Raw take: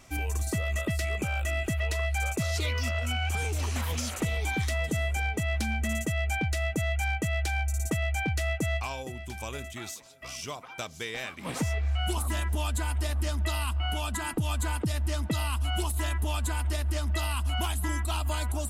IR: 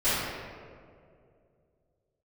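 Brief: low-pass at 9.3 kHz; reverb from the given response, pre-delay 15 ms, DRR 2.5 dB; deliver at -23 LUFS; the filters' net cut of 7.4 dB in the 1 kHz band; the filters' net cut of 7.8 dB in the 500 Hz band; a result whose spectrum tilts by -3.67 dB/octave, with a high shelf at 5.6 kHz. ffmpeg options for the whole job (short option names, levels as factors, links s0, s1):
-filter_complex "[0:a]lowpass=9300,equalizer=f=500:t=o:g=-8.5,equalizer=f=1000:t=o:g=-7,highshelf=f=5600:g=6.5,asplit=2[s0][s1];[1:a]atrim=start_sample=2205,adelay=15[s2];[s1][s2]afir=irnorm=-1:irlink=0,volume=0.141[s3];[s0][s3]amix=inputs=2:normalize=0,volume=2.24"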